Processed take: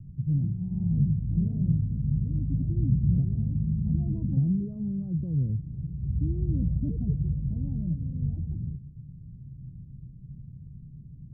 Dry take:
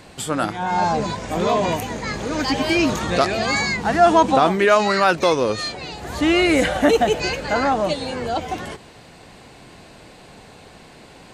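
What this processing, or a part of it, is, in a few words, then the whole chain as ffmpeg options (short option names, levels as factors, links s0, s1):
the neighbour's flat through the wall: -af "lowpass=f=150:w=0.5412,lowpass=f=150:w=1.3066,equalizer=f=140:t=o:w=0.44:g=7.5,volume=2"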